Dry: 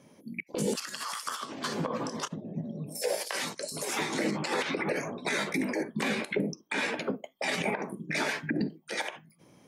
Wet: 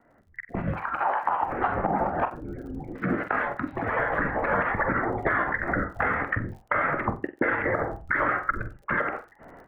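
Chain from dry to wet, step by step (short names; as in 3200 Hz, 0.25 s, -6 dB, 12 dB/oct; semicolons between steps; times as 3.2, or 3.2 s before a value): Wiener smoothing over 9 samples; ten-band EQ 125 Hz -12 dB, 250 Hz -10 dB, 500 Hz -9 dB; in parallel at -9 dB: sine folder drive 8 dB, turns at -19 dBFS; on the sum: compressor, threshold -37 dBFS, peak gain reduction 12 dB; mistuned SSB -310 Hz 380–2100 Hz; on a send: flutter echo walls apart 7.9 m, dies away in 0.25 s; on the sum: crackle 41/s -62 dBFS; AGC gain up to 16 dB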